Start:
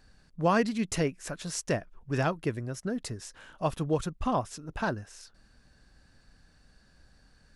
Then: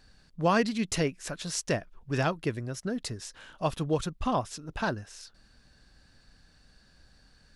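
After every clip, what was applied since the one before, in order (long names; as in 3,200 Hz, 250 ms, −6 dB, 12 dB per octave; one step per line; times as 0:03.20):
parametric band 3,900 Hz +5 dB 1.3 octaves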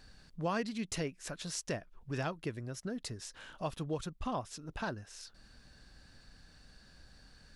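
downward compressor 1.5 to 1, threshold −53 dBFS, peak gain reduction 12 dB
level +1.5 dB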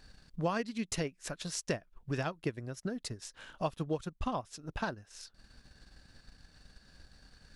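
transient designer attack +5 dB, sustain −7 dB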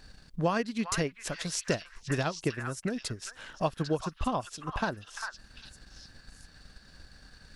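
echo through a band-pass that steps 399 ms, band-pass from 1,500 Hz, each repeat 1.4 octaves, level −2 dB
level +4.5 dB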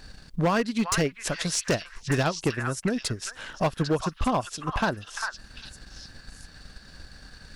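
gain into a clipping stage and back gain 24.5 dB
level +6.5 dB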